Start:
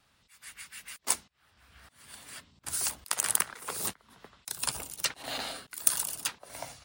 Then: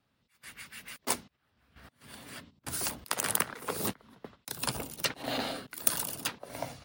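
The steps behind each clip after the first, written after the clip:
noise gate −55 dBFS, range −11 dB
graphic EQ with 10 bands 125 Hz +6 dB, 250 Hz +8 dB, 500 Hz +5 dB, 8,000 Hz −7 dB
level +1 dB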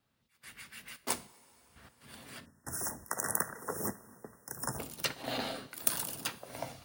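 coupled-rooms reverb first 0.39 s, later 4.3 s, from −18 dB, DRR 12 dB
log-companded quantiser 8 bits
time-frequency box erased 0:02.45–0:04.79, 2,000–5,200 Hz
level −3 dB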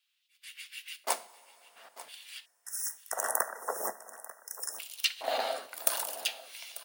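auto-filter high-pass square 0.48 Hz 650–2,900 Hz
single-tap delay 892 ms −17 dB
level +1.5 dB

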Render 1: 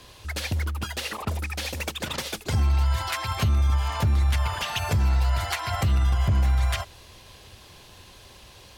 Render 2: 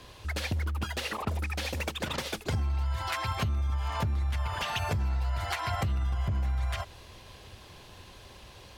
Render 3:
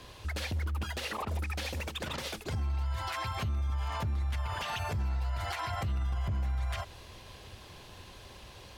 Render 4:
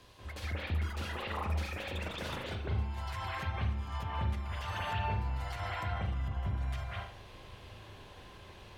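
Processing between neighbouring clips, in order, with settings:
high-shelf EQ 3,700 Hz −6.5 dB; downward compressor, threshold −27 dBFS, peak gain reduction 9 dB
brickwall limiter −26.5 dBFS, peak gain reduction 7.5 dB
flanger 0.4 Hz, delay 10 ms, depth 1.2 ms, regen +76%; convolution reverb, pre-delay 186 ms, DRR −6.5 dB; level −4 dB

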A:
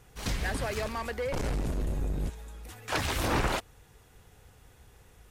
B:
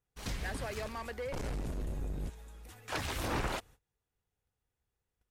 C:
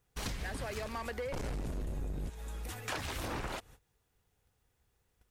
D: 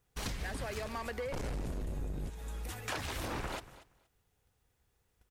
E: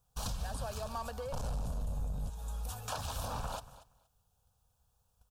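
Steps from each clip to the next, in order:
noise gate −49 dBFS, range −24 dB; level −6.5 dB
downward compressor 10 to 1, threshold −46 dBFS, peak gain reduction 15.5 dB; level +10.5 dB
repeating echo 236 ms, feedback 17%, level −17 dB
phaser with its sweep stopped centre 840 Hz, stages 4; level +2.5 dB

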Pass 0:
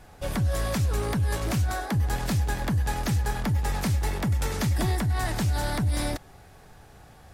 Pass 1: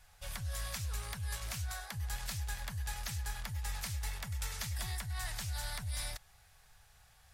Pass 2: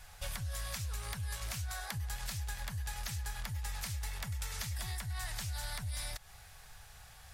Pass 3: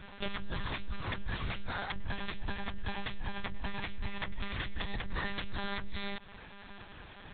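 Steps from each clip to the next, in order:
guitar amp tone stack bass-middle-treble 10-0-10; level −4.5 dB
downward compressor 6 to 1, threshold −45 dBFS, peak gain reduction 11 dB; level +8.5 dB
one-pitch LPC vocoder at 8 kHz 200 Hz; level +5 dB

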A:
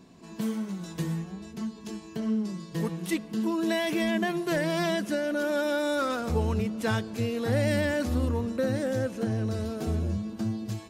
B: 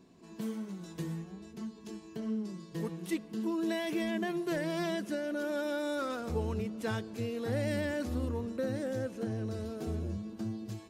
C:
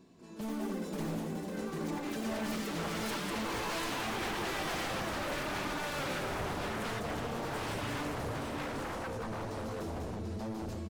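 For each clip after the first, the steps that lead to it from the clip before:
parametric band 370 Hz +4.5 dB 0.75 octaves; level −8 dB
multi-tap delay 197/740 ms −4/−4.5 dB; wave folding −33.5 dBFS; delay with pitch and tempo change per echo 191 ms, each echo +5 semitones, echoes 3

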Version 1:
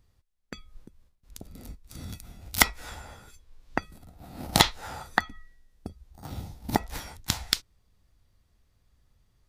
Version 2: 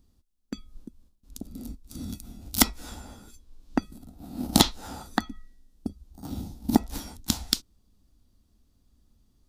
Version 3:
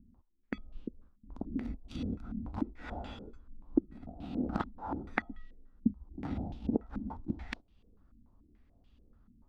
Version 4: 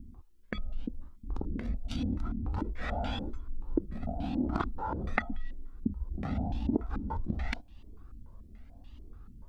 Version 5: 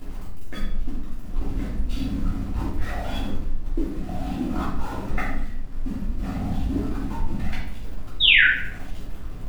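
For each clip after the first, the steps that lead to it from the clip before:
octave-band graphic EQ 125/250/500/1,000/2,000 Hz −7/+11/−5/−3/−11 dB; level +2.5 dB
phase distortion by the signal itself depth 0.096 ms; downward compressor 5 to 1, threshold −32 dBFS, peak gain reduction 17.5 dB; low-pass on a step sequencer 6.9 Hz 230–2,900 Hz
in parallel at −0.5 dB: compressor whose output falls as the input rises −45 dBFS, ratio −1; on the sum: flanger whose copies keep moving one way rising 0.89 Hz; level +6.5 dB
converter with a step at zero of −34.5 dBFS; sound drawn into the spectrogram fall, 0:08.20–0:08.44, 1,400–3,900 Hz −15 dBFS; convolution reverb RT60 0.75 s, pre-delay 3 ms, DRR −10 dB; level −9 dB

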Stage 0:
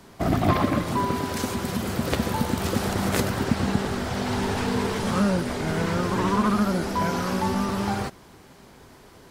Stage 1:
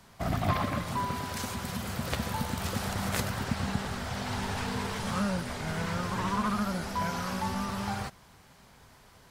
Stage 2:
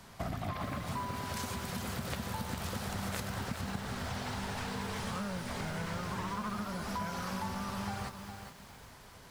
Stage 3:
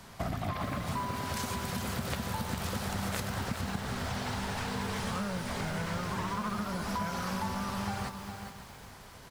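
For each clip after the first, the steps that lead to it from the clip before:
parametric band 340 Hz −11 dB 1.1 octaves; level −4.5 dB
downward compressor 5 to 1, threshold −38 dBFS, peak gain reduction 14.5 dB; feedback echo at a low word length 411 ms, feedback 35%, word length 9 bits, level −7.5 dB; level +2.5 dB
slap from a distant wall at 94 metres, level −15 dB; level +3 dB

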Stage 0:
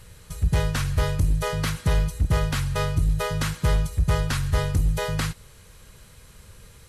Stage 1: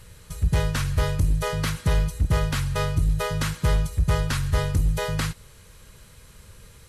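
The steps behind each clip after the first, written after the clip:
notch filter 750 Hz, Q 17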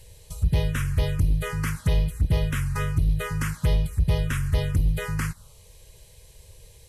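phaser swept by the level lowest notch 210 Hz, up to 1,400 Hz, full sweep at −17 dBFS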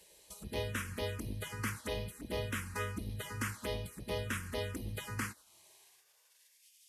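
high-pass filter sweep 150 Hz → 3,900 Hz, 0:05.18–0:06.72
gate on every frequency bin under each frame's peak −10 dB weak
level −6 dB

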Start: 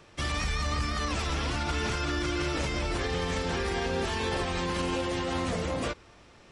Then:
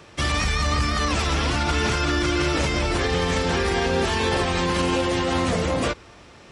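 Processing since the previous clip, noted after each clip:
high-pass filter 43 Hz
level +8 dB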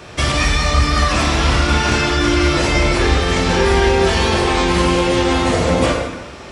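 downward compressor, threshold −24 dBFS, peak gain reduction 6.5 dB
dense smooth reverb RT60 1.1 s, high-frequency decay 0.75×, DRR −2.5 dB
level +8 dB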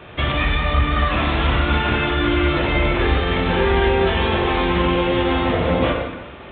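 level −3 dB
A-law companding 64 kbit/s 8,000 Hz

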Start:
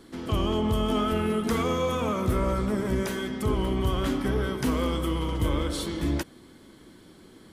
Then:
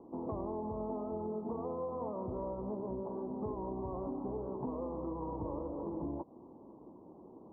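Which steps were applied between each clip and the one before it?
Butterworth low-pass 1,000 Hz 72 dB per octave
spectral tilt +4 dB per octave
downward compressor 10 to 1, threshold −40 dBFS, peak gain reduction 12.5 dB
level +4.5 dB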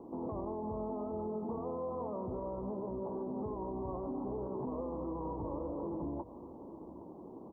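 brickwall limiter −36 dBFS, peak gain reduction 8.5 dB
single-tap delay 818 ms −16 dB
level +4.5 dB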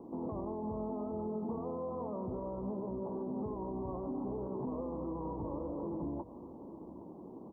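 parametric band 190 Hz +4 dB 1.3 octaves
level −1.5 dB

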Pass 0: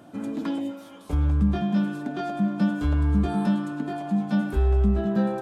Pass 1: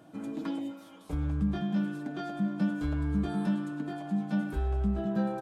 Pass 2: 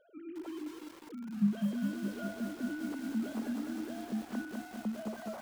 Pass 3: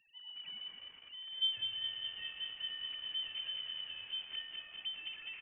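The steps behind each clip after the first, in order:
comb filter 6.3 ms, depth 38%; level −6.5 dB
three sine waves on the formant tracks; feedback echo at a low word length 203 ms, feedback 80%, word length 7 bits, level −4 dB; level −8 dB
repeating echo 110 ms, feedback 59%, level −15 dB; voice inversion scrambler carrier 3,300 Hz; level −5.5 dB

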